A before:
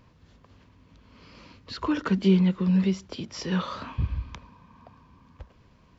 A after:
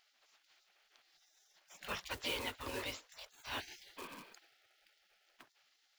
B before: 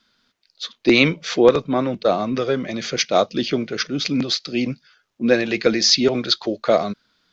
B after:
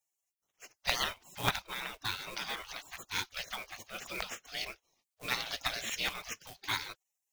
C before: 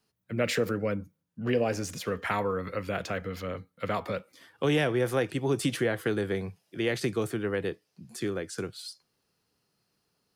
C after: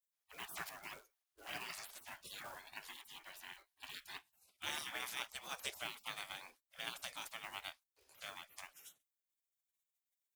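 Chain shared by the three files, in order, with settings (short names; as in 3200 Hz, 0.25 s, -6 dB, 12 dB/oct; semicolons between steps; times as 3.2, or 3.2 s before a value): short-mantissa float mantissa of 4-bit; bell 82 Hz -5.5 dB 0.24 oct; spectral gate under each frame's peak -25 dB weak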